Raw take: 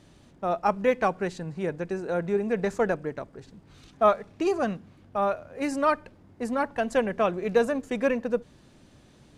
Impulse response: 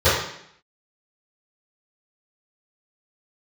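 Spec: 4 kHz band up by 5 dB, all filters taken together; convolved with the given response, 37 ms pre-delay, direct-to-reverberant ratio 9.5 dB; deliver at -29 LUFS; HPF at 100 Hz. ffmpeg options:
-filter_complex "[0:a]highpass=100,equalizer=f=4000:t=o:g=6.5,asplit=2[s0][s1];[1:a]atrim=start_sample=2205,adelay=37[s2];[s1][s2]afir=irnorm=-1:irlink=0,volume=0.0237[s3];[s0][s3]amix=inputs=2:normalize=0,volume=0.708"

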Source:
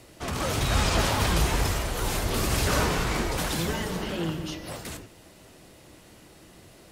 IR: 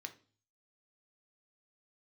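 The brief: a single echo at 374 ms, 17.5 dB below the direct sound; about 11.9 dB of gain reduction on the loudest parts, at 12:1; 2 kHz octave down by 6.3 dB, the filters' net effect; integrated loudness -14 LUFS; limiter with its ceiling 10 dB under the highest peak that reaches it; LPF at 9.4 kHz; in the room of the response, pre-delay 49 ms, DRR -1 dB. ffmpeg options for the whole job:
-filter_complex "[0:a]lowpass=9400,equalizer=f=2000:t=o:g=-8.5,acompressor=threshold=0.0251:ratio=12,alimiter=level_in=2.99:limit=0.0631:level=0:latency=1,volume=0.335,aecho=1:1:374:0.133,asplit=2[s0][s1];[1:a]atrim=start_sample=2205,adelay=49[s2];[s1][s2]afir=irnorm=-1:irlink=0,volume=1.58[s3];[s0][s3]amix=inputs=2:normalize=0,volume=22.4"

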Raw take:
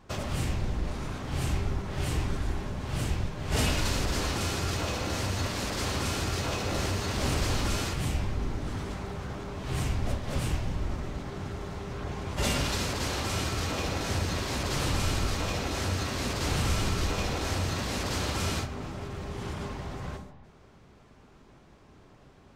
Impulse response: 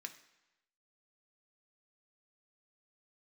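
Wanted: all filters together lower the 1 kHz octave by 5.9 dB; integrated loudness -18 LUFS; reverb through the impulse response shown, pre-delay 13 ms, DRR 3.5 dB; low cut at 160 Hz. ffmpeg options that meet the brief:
-filter_complex "[0:a]highpass=160,equalizer=f=1000:t=o:g=-8,asplit=2[s0][s1];[1:a]atrim=start_sample=2205,adelay=13[s2];[s1][s2]afir=irnorm=-1:irlink=0,volume=1[s3];[s0][s3]amix=inputs=2:normalize=0,volume=5.62"

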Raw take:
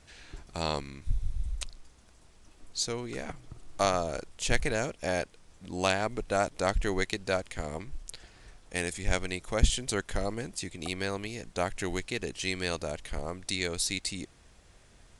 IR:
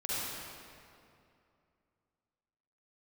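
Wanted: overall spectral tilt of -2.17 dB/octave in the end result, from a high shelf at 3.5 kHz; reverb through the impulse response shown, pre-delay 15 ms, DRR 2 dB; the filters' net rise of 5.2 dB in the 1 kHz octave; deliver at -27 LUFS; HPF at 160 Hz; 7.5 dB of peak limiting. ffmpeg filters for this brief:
-filter_complex "[0:a]highpass=160,equalizer=f=1000:t=o:g=7,highshelf=f=3500:g=5.5,alimiter=limit=0.251:level=0:latency=1,asplit=2[s0][s1];[1:a]atrim=start_sample=2205,adelay=15[s2];[s1][s2]afir=irnorm=-1:irlink=0,volume=0.398[s3];[s0][s3]amix=inputs=2:normalize=0,volume=1.26"

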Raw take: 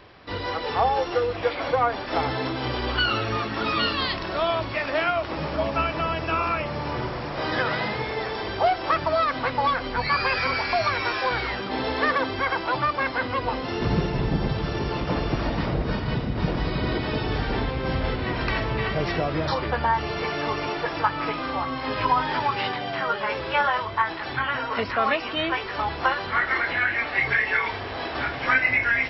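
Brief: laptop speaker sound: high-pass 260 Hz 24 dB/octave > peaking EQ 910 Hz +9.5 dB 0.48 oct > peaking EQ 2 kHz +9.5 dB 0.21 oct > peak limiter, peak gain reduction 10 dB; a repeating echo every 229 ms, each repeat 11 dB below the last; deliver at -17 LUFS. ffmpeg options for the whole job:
-af "highpass=f=260:w=0.5412,highpass=f=260:w=1.3066,equalizer=f=910:t=o:w=0.48:g=9.5,equalizer=f=2000:t=o:w=0.21:g=9.5,aecho=1:1:229|458|687:0.282|0.0789|0.0221,volume=1.88,alimiter=limit=0.447:level=0:latency=1"

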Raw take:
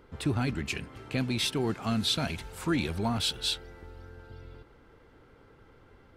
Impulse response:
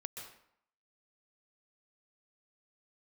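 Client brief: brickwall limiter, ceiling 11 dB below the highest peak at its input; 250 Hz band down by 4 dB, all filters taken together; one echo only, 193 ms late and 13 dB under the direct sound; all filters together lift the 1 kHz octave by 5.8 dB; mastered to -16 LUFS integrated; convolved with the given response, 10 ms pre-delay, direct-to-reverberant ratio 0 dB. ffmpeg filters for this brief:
-filter_complex "[0:a]equalizer=f=250:t=o:g=-5.5,equalizer=f=1000:t=o:g=8,alimiter=level_in=1.12:limit=0.0631:level=0:latency=1,volume=0.891,aecho=1:1:193:0.224,asplit=2[s0][s1];[1:a]atrim=start_sample=2205,adelay=10[s2];[s1][s2]afir=irnorm=-1:irlink=0,volume=1.33[s3];[s0][s3]amix=inputs=2:normalize=0,volume=6.31"

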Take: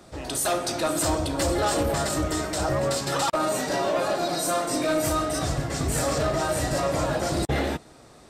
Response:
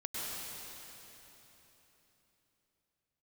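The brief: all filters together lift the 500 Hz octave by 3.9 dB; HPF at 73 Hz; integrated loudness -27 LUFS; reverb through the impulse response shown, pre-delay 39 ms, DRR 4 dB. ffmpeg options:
-filter_complex "[0:a]highpass=73,equalizer=f=500:t=o:g=5,asplit=2[s0][s1];[1:a]atrim=start_sample=2205,adelay=39[s2];[s1][s2]afir=irnorm=-1:irlink=0,volume=0.422[s3];[s0][s3]amix=inputs=2:normalize=0,volume=0.562"

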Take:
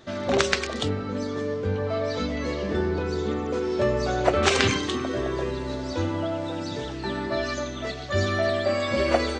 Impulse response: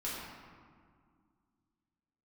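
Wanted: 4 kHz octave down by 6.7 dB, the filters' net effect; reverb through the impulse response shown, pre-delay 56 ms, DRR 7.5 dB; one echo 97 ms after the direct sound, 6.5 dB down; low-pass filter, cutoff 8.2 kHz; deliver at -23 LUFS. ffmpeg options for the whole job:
-filter_complex "[0:a]lowpass=8200,equalizer=f=4000:t=o:g=-8.5,aecho=1:1:97:0.473,asplit=2[s0][s1];[1:a]atrim=start_sample=2205,adelay=56[s2];[s1][s2]afir=irnorm=-1:irlink=0,volume=0.282[s3];[s0][s3]amix=inputs=2:normalize=0,volume=1.19"

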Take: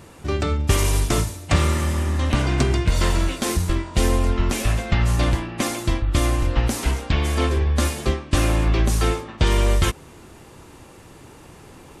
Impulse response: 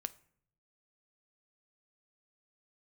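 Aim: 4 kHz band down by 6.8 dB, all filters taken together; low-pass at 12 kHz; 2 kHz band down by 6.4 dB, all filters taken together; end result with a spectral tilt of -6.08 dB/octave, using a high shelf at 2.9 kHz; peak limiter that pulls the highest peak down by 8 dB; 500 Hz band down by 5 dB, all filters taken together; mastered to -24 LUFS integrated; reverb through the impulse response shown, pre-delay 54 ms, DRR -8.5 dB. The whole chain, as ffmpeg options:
-filter_complex "[0:a]lowpass=12000,equalizer=f=500:t=o:g=-6.5,equalizer=f=2000:t=o:g=-5,highshelf=f=2900:g=-4.5,equalizer=f=4000:t=o:g=-3.5,alimiter=limit=0.188:level=0:latency=1,asplit=2[s0][s1];[1:a]atrim=start_sample=2205,adelay=54[s2];[s1][s2]afir=irnorm=-1:irlink=0,volume=3.35[s3];[s0][s3]amix=inputs=2:normalize=0,volume=0.398"

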